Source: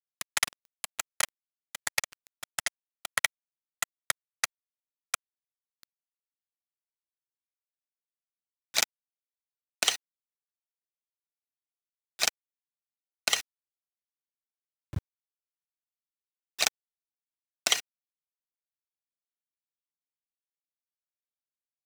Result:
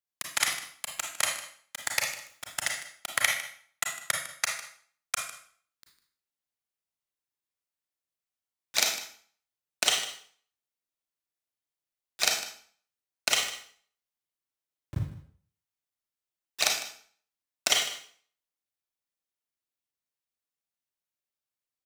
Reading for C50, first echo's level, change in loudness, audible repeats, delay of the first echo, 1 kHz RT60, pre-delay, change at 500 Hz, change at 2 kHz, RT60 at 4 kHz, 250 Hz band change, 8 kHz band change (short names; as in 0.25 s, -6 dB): 4.5 dB, -15.0 dB, +1.5 dB, 1, 0.153 s, 0.55 s, 28 ms, +3.0 dB, +2.5 dB, 0.55 s, +3.0 dB, +2.0 dB